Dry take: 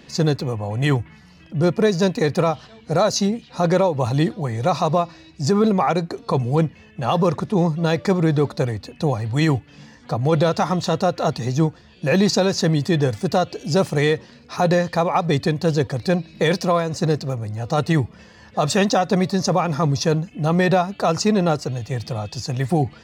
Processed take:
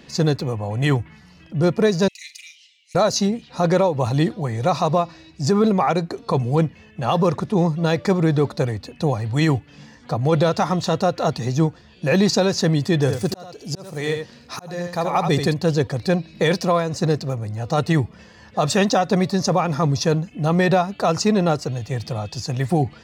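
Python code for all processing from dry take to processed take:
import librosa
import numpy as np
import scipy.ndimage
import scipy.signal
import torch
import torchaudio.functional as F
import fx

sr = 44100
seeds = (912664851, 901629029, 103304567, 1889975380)

y = fx.chain(x, sr, fx.cheby_ripple_highpass(hz=2000.0, ripple_db=6),
    fx.room_flutter(wall_m=7.8, rt60_s=0.23), at=(2.08, 2.95))
y = fx.chain(y, sr, fx.high_shelf(hz=7500.0, db=9.0),
    fx.echo_single(ms=80, db=-7.5),
    fx.auto_swell(attack_ms=658.0), at=(13.0, 15.54))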